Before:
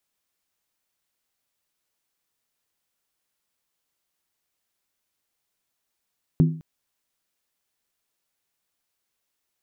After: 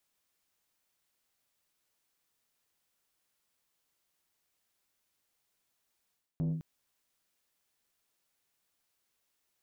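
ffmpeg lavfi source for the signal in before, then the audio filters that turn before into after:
-f lavfi -i "aevalsrc='0.282*pow(10,-3*t/0.44)*sin(2*PI*160*t)+0.119*pow(10,-3*t/0.349)*sin(2*PI*255*t)+0.0501*pow(10,-3*t/0.301)*sin(2*PI*341.8*t)+0.0211*pow(10,-3*t/0.29)*sin(2*PI*367.4*t)+0.00891*pow(10,-3*t/0.27)*sin(2*PI*424.5*t)':d=0.21:s=44100"
-af "areverse,acompressor=threshold=-29dB:ratio=8,areverse,asoftclip=type=tanh:threshold=-27dB"

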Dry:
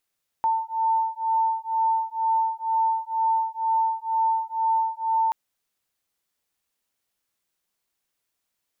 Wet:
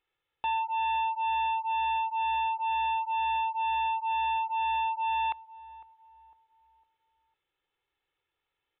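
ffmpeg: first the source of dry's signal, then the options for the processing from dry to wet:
-f lavfi -i "aevalsrc='0.0631*(sin(2*PI*895*t)+sin(2*PI*897.1*t))':d=4.88:s=44100"
-filter_complex "[0:a]aecho=1:1:2.3:0.82,aresample=8000,asoftclip=type=tanh:threshold=-27.5dB,aresample=44100,asplit=2[a][b];[b]adelay=504,lowpass=f=920:p=1,volume=-16dB,asplit=2[c][d];[d]adelay=504,lowpass=f=920:p=1,volume=0.48,asplit=2[e][f];[f]adelay=504,lowpass=f=920:p=1,volume=0.48,asplit=2[g][h];[h]adelay=504,lowpass=f=920:p=1,volume=0.48[i];[a][c][e][g][i]amix=inputs=5:normalize=0"

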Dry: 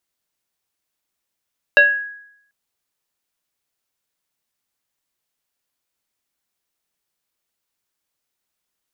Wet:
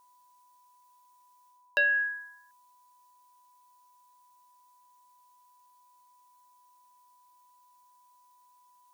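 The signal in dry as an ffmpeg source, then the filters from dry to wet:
-f lavfi -i "aevalsrc='0.562*pow(10,-3*t/0.74)*sin(2*PI*1660*t+0.95*pow(10,-3*t/0.46)*sin(2*PI*0.65*1660*t))':d=0.74:s=44100"
-af "bass=f=250:g=-2,treble=f=4k:g=9,areverse,acompressor=threshold=-26dB:ratio=4,areverse,aeval=exprs='val(0)+0.001*sin(2*PI*990*n/s)':c=same"

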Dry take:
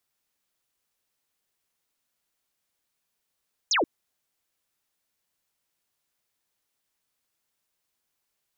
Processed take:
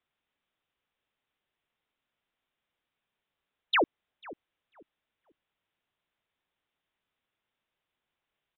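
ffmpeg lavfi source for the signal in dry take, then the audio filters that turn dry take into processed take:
-f lavfi -i "aevalsrc='0.1*clip(t/0.002,0,1)*clip((0.13-t)/0.002,0,1)*sin(2*PI*7200*0.13/log(260/7200)*(exp(log(260/7200)*t/0.13)-1))':d=0.13:s=44100"
-filter_complex "[0:a]asplit=2[a][b];[b]adelay=493,lowpass=f=1k:p=1,volume=-17dB,asplit=2[c][d];[d]adelay=493,lowpass=f=1k:p=1,volume=0.27,asplit=2[e][f];[f]adelay=493,lowpass=f=1k:p=1,volume=0.27[g];[a][c][e][g]amix=inputs=4:normalize=0,aresample=8000,aresample=44100"

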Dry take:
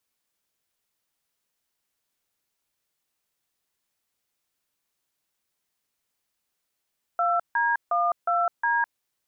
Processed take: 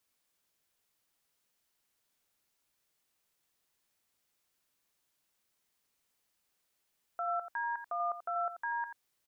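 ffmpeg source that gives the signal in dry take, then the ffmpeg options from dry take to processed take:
-f lavfi -i "aevalsrc='0.0708*clip(min(mod(t,0.361),0.207-mod(t,0.361))/0.002,0,1)*(eq(floor(t/0.361),0)*(sin(2*PI*697*mod(t,0.361))+sin(2*PI*1336*mod(t,0.361)))+eq(floor(t/0.361),1)*(sin(2*PI*941*mod(t,0.361))+sin(2*PI*1633*mod(t,0.361)))+eq(floor(t/0.361),2)*(sin(2*PI*697*mod(t,0.361))+sin(2*PI*1209*mod(t,0.361)))+eq(floor(t/0.361),3)*(sin(2*PI*697*mod(t,0.361))+sin(2*PI*1336*mod(t,0.361)))+eq(floor(t/0.361),4)*(sin(2*PI*941*mod(t,0.361))+sin(2*PI*1633*mod(t,0.361))))':d=1.805:s=44100"
-filter_complex "[0:a]alimiter=level_in=5dB:limit=-24dB:level=0:latency=1:release=32,volume=-5dB,asplit=2[a][b];[b]aecho=0:1:86:0.316[c];[a][c]amix=inputs=2:normalize=0"

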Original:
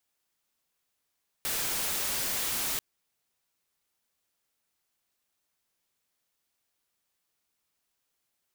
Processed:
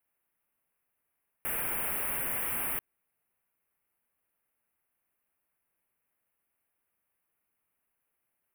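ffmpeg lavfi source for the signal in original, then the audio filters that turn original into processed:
-f lavfi -i "anoisesrc=c=white:a=0.0488:d=1.34:r=44100:seed=1"
-af "asuperstop=centerf=5300:order=8:qfactor=0.75"

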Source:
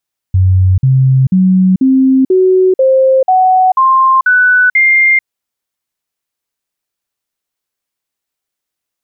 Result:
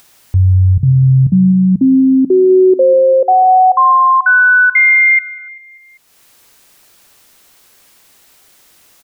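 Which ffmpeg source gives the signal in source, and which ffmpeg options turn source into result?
-f lavfi -i "aevalsrc='0.562*clip(min(mod(t,0.49),0.44-mod(t,0.49))/0.005,0,1)*sin(2*PI*93.2*pow(2,floor(t/0.49)/2)*mod(t,0.49))':d=4.9:s=44100"
-af "bandreject=f=60:t=h:w=6,bandreject=f=120:t=h:w=6,acompressor=mode=upward:threshold=-23dB:ratio=2.5,aecho=1:1:196|392|588|784:0.15|0.0733|0.0359|0.0176"

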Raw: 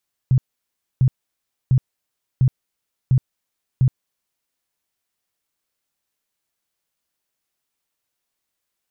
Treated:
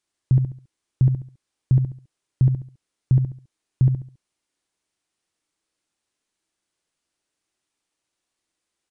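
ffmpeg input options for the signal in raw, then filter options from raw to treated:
-f lavfi -i "aevalsrc='0.282*sin(2*PI*129*mod(t,0.7))*lt(mod(t,0.7),9/129)':d=4.2:s=44100"
-filter_complex "[0:a]equalizer=f=320:w=2.7:g=7,asplit=2[a][b];[b]aecho=0:1:69|138|207|276:0.447|0.138|0.0429|0.0133[c];[a][c]amix=inputs=2:normalize=0,aresample=22050,aresample=44100"

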